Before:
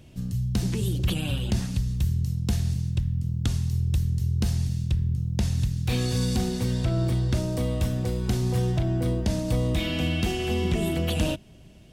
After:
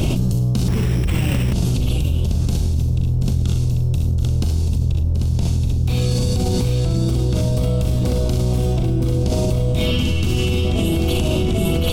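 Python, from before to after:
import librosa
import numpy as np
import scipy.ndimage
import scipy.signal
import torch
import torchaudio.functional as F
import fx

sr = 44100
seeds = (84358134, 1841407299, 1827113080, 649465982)

y = fx.octave_divider(x, sr, octaves=1, level_db=-2.0)
y = fx.peak_eq(y, sr, hz=1800.0, db=-13.0, octaves=0.37)
y = fx.doubler(y, sr, ms=40.0, db=-8)
y = fx.echo_multitap(y, sr, ms=(63, 75, 733, 792), db=(-7.0, -8.5, -11.0, -6.0))
y = fx.resample_bad(y, sr, factor=8, down='none', up='hold', at=(0.68, 1.53))
y = fx.peak_eq(y, sr, hz=650.0, db=-14.0, octaves=0.49, at=(9.91, 10.65))
y = fx.env_flatten(y, sr, amount_pct=100)
y = y * librosa.db_to_amplitude(-4.0)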